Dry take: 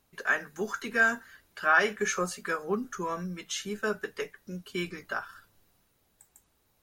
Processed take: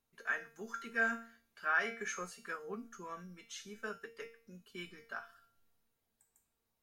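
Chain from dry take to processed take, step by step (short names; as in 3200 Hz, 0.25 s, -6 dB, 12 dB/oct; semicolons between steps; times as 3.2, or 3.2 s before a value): resonator 230 Hz, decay 0.47 s, harmonics all, mix 80%; dynamic EQ 1800 Hz, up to +6 dB, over -50 dBFS, Q 0.85; gain -2.5 dB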